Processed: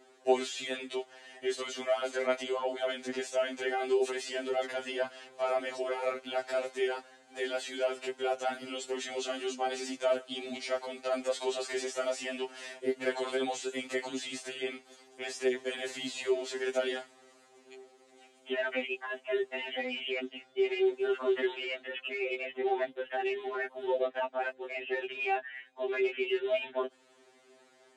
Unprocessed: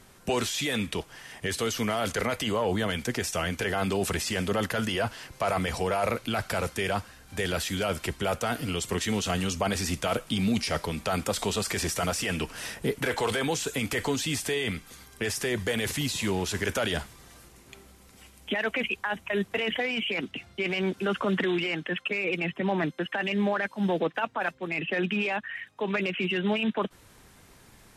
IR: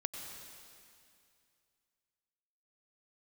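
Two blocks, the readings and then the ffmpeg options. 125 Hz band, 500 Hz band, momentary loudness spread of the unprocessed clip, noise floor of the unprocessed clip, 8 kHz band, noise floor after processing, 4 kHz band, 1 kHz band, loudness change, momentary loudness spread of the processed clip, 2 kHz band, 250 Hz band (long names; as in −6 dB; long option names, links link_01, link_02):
below −30 dB, −1.0 dB, 5 LU, −55 dBFS, −10.5 dB, −62 dBFS, −7.0 dB, −4.5 dB, −5.0 dB, 8 LU, −6.5 dB, −9.5 dB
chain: -af "highpass=frequency=260:width=0.5412,highpass=frequency=260:width=1.3066,equalizer=frequency=390:width_type=q:width=4:gain=5,equalizer=frequency=690:width_type=q:width=4:gain=9,equalizer=frequency=1100:width_type=q:width=4:gain=-5,equalizer=frequency=5500:width_type=q:width=4:gain=-6,lowpass=frequency=7800:width=0.5412,lowpass=frequency=7800:width=1.3066,afftfilt=real='re*2.45*eq(mod(b,6),0)':imag='im*2.45*eq(mod(b,6),0)':win_size=2048:overlap=0.75,volume=-4dB"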